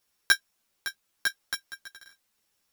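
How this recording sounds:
a buzz of ramps at a fixed pitch in blocks of 8 samples
chopped level 0.85 Hz, depth 65%, duty 45%
a quantiser's noise floor 12 bits, dither triangular
a shimmering, thickened sound

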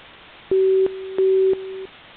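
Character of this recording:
a quantiser's noise floor 6 bits, dither triangular
mu-law

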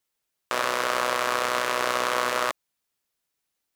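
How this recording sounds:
background noise floor −81 dBFS
spectral slope −1.0 dB per octave

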